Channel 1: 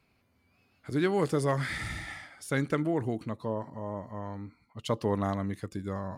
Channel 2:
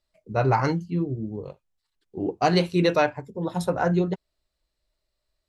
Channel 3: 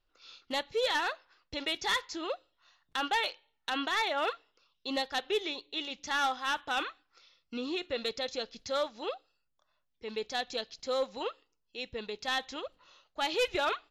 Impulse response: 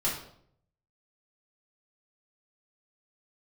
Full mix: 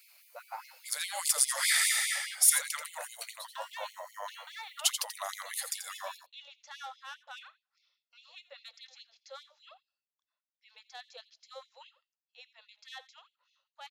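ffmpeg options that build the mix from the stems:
-filter_complex "[0:a]highshelf=frequency=7200:gain=5,alimiter=level_in=2dB:limit=-24dB:level=0:latency=1:release=26,volume=-2dB,crystalizer=i=8.5:c=0,volume=-1dB,asplit=3[link_01][link_02][link_03];[link_02]volume=-9dB[link_04];[1:a]volume=-18.5dB,asplit=2[link_05][link_06];[link_06]volume=-18dB[link_07];[2:a]dynaudnorm=framelen=110:gausssize=21:maxgain=3dB,adelay=600,volume=-16dB,asplit=2[link_08][link_09];[link_09]volume=-18.5dB[link_10];[link_03]apad=whole_len=241854[link_11];[link_05][link_11]sidechaincompress=threshold=-37dB:ratio=8:attack=16:release=111[link_12];[link_04][link_07][link_10]amix=inputs=3:normalize=0,aecho=0:1:85:1[link_13];[link_01][link_12][link_08][link_13]amix=inputs=4:normalize=0,afftfilt=real='re*gte(b*sr/1024,470*pow(2100/470,0.5+0.5*sin(2*PI*4.9*pts/sr)))':imag='im*gte(b*sr/1024,470*pow(2100/470,0.5+0.5*sin(2*PI*4.9*pts/sr)))':win_size=1024:overlap=0.75"

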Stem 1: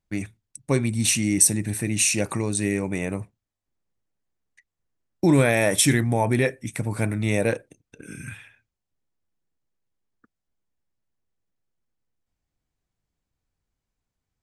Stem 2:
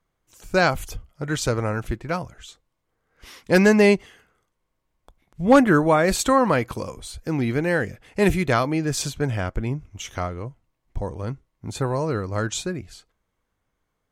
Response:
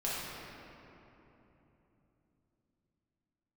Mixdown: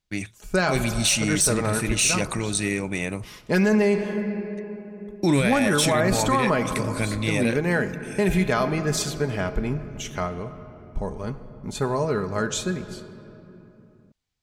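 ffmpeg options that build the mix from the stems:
-filter_complex "[0:a]equalizer=frequency=3900:width_type=o:width=1.9:gain=10.5,acontrast=26,volume=-7dB[link_01];[1:a]aecho=1:1:4.8:0.46,agate=range=-33dB:threshold=-47dB:ratio=3:detection=peak,volume=-1.5dB,asplit=2[link_02][link_03];[link_03]volume=-15.5dB[link_04];[2:a]atrim=start_sample=2205[link_05];[link_04][link_05]afir=irnorm=-1:irlink=0[link_06];[link_01][link_02][link_06]amix=inputs=3:normalize=0,alimiter=limit=-11.5dB:level=0:latency=1:release=71"

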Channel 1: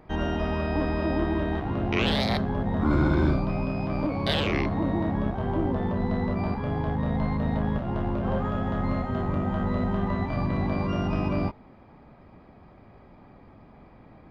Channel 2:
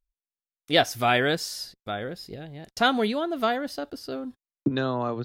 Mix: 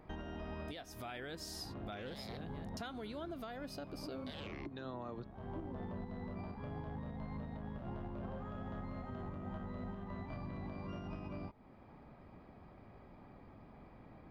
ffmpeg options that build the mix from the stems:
ffmpeg -i stem1.wav -i stem2.wav -filter_complex "[0:a]acompressor=threshold=-30dB:ratio=6,volume=-6dB[link_01];[1:a]acompressor=threshold=-28dB:ratio=6,volume=-6.5dB,asplit=2[link_02][link_03];[link_03]apad=whole_len=630753[link_04];[link_01][link_04]sidechaincompress=threshold=-42dB:ratio=8:attack=21:release=833[link_05];[link_05][link_02]amix=inputs=2:normalize=0,alimiter=level_in=11dB:limit=-24dB:level=0:latency=1:release=444,volume=-11dB" out.wav

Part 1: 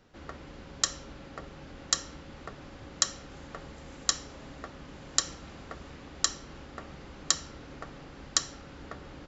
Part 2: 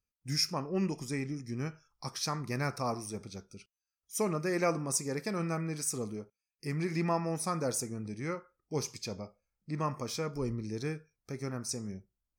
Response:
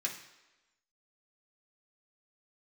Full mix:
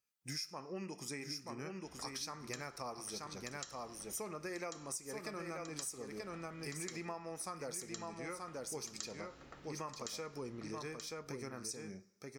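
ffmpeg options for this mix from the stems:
-filter_complex "[0:a]adelay=1700,volume=-14dB,asplit=3[link_01][link_02][link_03];[link_02]volume=-5dB[link_04];[link_03]volume=-6.5dB[link_05];[1:a]highpass=frequency=420:poles=1,acontrast=77,volume=-5dB,asplit=3[link_06][link_07][link_08];[link_07]volume=-14.5dB[link_09];[link_08]volume=-6.5dB[link_10];[2:a]atrim=start_sample=2205[link_11];[link_04][link_09]amix=inputs=2:normalize=0[link_12];[link_12][link_11]afir=irnorm=-1:irlink=0[link_13];[link_05][link_10]amix=inputs=2:normalize=0,aecho=0:1:931:1[link_14];[link_01][link_06][link_13][link_14]amix=inputs=4:normalize=0,acompressor=threshold=-41dB:ratio=6"

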